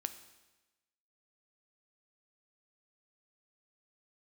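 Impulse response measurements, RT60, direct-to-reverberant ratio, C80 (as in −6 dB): 1.1 s, 9.5 dB, 14.0 dB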